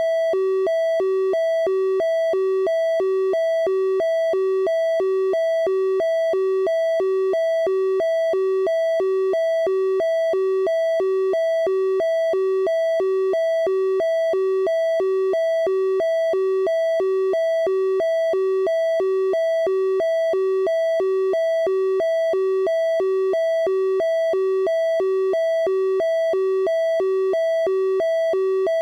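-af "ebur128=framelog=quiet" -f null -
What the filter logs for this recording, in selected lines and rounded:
Integrated loudness:
  I:         -20.4 LUFS
  Threshold: -30.4 LUFS
Loudness range:
  LRA:         0.0 LU
  Threshold: -40.4 LUFS
  LRA low:   -20.4 LUFS
  LRA high:  -20.4 LUFS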